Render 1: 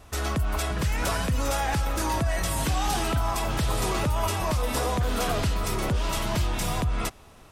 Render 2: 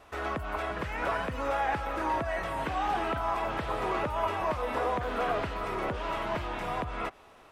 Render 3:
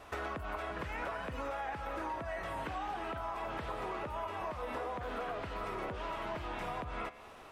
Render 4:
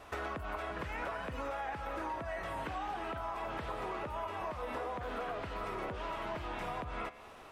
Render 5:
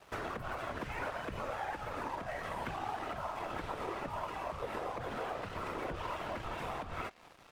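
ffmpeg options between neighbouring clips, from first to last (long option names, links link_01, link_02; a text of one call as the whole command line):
ffmpeg -i in.wav -filter_complex "[0:a]acrossover=split=2700[link_01][link_02];[link_02]acompressor=threshold=-47dB:ratio=4:attack=1:release=60[link_03];[link_01][link_03]amix=inputs=2:normalize=0,bass=frequency=250:gain=-14,treble=frequency=4000:gain=-11" out.wav
ffmpeg -i in.wav -af "flanger=delay=9.8:depth=4.2:regen=87:speed=0.36:shape=sinusoidal,acompressor=threshold=-43dB:ratio=10,volume=7dB" out.wav
ffmpeg -i in.wav -af anull out.wav
ffmpeg -i in.wav -af "afftfilt=real='hypot(re,im)*cos(2*PI*random(0))':imag='hypot(re,im)*sin(2*PI*random(1))':win_size=512:overlap=0.75,aeval=exprs='sgn(val(0))*max(abs(val(0))-0.00106,0)':channel_layout=same,volume=7dB" out.wav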